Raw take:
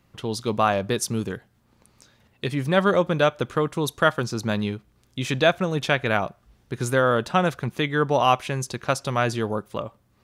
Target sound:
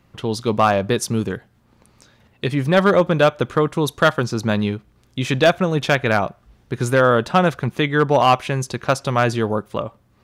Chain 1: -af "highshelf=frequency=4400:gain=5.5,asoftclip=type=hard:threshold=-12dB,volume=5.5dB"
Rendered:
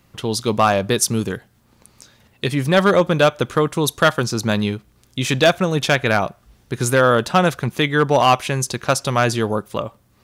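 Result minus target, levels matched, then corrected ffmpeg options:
8,000 Hz band +7.5 dB
-af "highshelf=frequency=4400:gain=-5.5,asoftclip=type=hard:threshold=-12dB,volume=5.5dB"

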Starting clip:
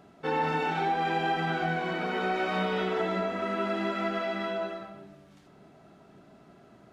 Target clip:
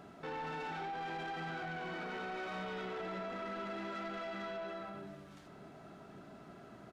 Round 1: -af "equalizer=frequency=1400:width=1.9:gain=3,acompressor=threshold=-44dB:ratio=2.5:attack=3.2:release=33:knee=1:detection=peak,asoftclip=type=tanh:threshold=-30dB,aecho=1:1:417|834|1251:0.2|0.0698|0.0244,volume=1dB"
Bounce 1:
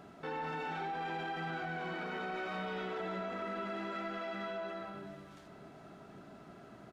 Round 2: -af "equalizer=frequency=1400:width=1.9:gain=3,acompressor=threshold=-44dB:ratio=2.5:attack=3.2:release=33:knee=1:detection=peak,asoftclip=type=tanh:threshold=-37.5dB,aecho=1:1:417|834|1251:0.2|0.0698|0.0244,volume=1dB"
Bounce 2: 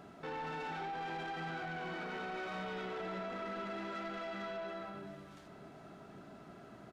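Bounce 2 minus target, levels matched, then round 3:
echo-to-direct +6.5 dB
-af "equalizer=frequency=1400:width=1.9:gain=3,acompressor=threshold=-44dB:ratio=2.5:attack=3.2:release=33:knee=1:detection=peak,asoftclip=type=tanh:threshold=-37.5dB,aecho=1:1:417|834|1251:0.0944|0.033|0.0116,volume=1dB"

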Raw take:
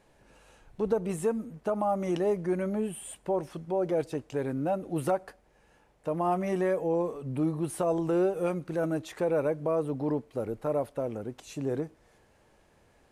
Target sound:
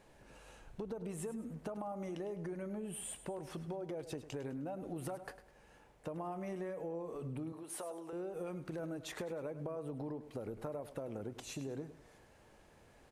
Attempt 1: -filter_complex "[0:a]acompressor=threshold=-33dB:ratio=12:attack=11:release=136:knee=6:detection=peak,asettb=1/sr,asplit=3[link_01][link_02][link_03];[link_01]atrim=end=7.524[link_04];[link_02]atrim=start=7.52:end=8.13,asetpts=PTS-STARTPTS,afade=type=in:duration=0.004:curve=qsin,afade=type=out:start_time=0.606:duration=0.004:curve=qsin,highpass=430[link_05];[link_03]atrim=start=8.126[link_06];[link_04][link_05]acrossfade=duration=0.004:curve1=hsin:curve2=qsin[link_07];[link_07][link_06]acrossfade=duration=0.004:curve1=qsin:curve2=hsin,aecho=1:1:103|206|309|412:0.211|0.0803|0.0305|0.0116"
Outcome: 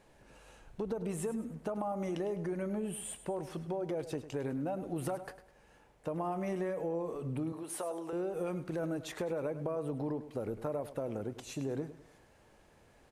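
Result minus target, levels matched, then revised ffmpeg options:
downward compressor: peak gain reduction −6.5 dB
-filter_complex "[0:a]acompressor=threshold=-40dB:ratio=12:attack=11:release=136:knee=6:detection=peak,asettb=1/sr,asplit=3[link_01][link_02][link_03];[link_01]atrim=end=7.524[link_04];[link_02]atrim=start=7.52:end=8.13,asetpts=PTS-STARTPTS,afade=type=in:duration=0.004:curve=qsin,afade=type=out:start_time=0.606:duration=0.004:curve=qsin,highpass=430[link_05];[link_03]atrim=start=8.126[link_06];[link_04][link_05]acrossfade=duration=0.004:curve1=hsin:curve2=qsin[link_07];[link_07][link_06]acrossfade=duration=0.004:curve1=qsin:curve2=hsin,aecho=1:1:103|206|309|412:0.211|0.0803|0.0305|0.0116"

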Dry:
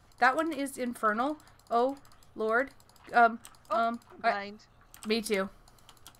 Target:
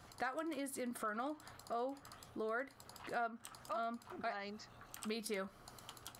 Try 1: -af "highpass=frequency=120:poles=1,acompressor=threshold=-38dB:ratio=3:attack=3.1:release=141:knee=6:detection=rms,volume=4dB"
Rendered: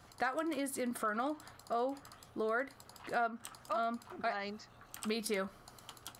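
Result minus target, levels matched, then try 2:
downward compressor: peak gain reduction −5.5 dB
-af "highpass=frequency=120:poles=1,acompressor=threshold=-46.5dB:ratio=3:attack=3.1:release=141:knee=6:detection=rms,volume=4dB"

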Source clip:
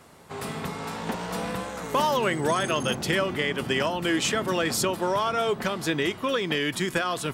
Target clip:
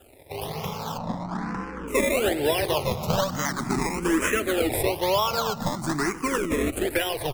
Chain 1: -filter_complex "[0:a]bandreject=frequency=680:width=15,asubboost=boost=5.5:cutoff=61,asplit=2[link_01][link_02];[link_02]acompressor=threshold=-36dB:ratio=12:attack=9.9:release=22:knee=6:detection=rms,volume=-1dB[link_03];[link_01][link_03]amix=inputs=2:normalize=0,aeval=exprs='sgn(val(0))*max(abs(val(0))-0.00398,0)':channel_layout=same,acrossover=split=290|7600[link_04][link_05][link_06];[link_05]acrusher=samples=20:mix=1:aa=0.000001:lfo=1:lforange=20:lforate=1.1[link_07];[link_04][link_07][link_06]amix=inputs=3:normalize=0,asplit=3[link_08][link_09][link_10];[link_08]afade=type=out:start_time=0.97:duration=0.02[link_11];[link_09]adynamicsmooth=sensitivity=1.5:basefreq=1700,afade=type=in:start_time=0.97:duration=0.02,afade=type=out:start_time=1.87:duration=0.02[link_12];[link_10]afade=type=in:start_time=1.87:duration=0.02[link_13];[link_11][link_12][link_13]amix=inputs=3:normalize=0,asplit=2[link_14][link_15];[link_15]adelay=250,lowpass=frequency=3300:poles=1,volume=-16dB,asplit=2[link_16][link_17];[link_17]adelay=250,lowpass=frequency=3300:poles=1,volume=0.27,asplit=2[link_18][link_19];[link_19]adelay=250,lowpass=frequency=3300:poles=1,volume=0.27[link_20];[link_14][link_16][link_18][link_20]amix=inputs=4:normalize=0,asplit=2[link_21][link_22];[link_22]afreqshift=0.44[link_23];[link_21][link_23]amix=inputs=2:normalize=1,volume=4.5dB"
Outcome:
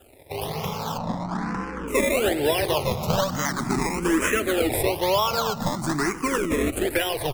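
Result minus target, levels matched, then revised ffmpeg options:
downward compressor: peak gain reduction −9.5 dB
-filter_complex "[0:a]bandreject=frequency=680:width=15,asubboost=boost=5.5:cutoff=61,asplit=2[link_01][link_02];[link_02]acompressor=threshold=-46.5dB:ratio=12:attack=9.9:release=22:knee=6:detection=rms,volume=-1dB[link_03];[link_01][link_03]amix=inputs=2:normalize=0,aeval=exprs='sgn(val(0))*max(abs(val(0))-0.00398,0)':channel_layout=same,acrossover=split=290|7600[link_04][link_05][link_06];[link_05]acrusher=samples=20:mix=1:aa=0.000001:lfo=1:lforange=20:lforate=1.1[link_07];[link_04][link_07][link_06]amix=inputs=3:normalize=0,asplit=3[link_08][link_09][link_10];[link_08]afade=type=out:start_time=0.97:duration=0.02[link_11];[link_09]adynamicsmooth=sensitivity=1.5:basefreq=1700,afade=type=in:start_time=0.97:duration=0.02,afade=type=out:start_time=1.87:duration=0.02[link_12];[link_10]afade=type=in:start_time=1.87:duration=0.02[link_13];[link_11][link_12][link_13]amix=inputs=3:normalize=0,asplit=2[link_14][link_15];[link_15]adelay=250,lowpass=frequency=3300:poles=1,volume=-16dB,asplit=2[link_16][link_17];[link_17]adelay=250,lowpass=frequency=3300:poles=1,volume=0.27,asplit=2[link_18][link_19];[link_19]adelay=250,lowpass=frequency=3300:poles=1,volume=0.27[link_20];[link_14][link_16][link_18][link_20]amix=inputs=4:normalize=0,asplit=2[link_21][link_22];[link_22]afreqshift=0.44[link_23];[link_21][link_23]amix=inputs=2:normalize=1,volume=4.5dB"

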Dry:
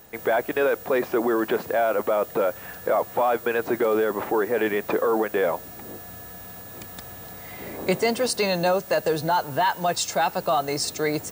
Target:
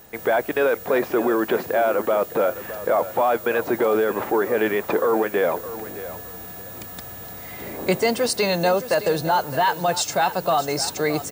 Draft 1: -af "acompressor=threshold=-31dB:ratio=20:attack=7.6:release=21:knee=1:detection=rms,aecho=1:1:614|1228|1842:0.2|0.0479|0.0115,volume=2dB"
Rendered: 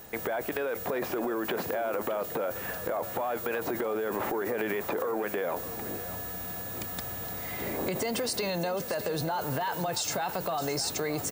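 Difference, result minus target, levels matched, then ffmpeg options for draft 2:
downward compressor: peak gain reduction +14.5 dB
-af "aecho=1:1:614|1228|1842:0.2|0.0479|0.0115,volume=2dB"

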